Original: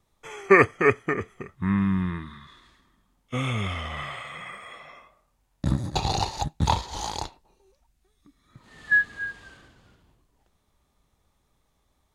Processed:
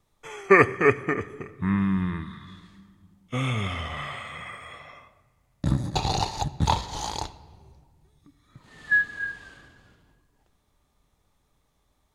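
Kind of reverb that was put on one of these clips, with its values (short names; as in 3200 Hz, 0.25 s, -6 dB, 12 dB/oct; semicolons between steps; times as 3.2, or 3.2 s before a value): shoebox room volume 3400 m³, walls mixed, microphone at 0.38 m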